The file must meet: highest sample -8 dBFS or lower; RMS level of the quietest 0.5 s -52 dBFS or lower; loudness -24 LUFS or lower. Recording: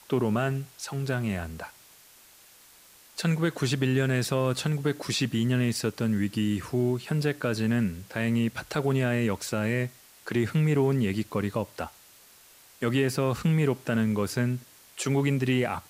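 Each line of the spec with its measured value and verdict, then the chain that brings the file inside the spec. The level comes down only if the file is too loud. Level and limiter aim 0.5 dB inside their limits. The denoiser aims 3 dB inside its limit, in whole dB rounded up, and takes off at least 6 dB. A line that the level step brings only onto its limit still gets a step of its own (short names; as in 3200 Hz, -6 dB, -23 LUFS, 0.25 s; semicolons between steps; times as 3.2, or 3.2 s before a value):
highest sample -12.5 dBFS: OK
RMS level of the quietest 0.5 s -55 dBFS: OK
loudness -27.5 LUFS: OK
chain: none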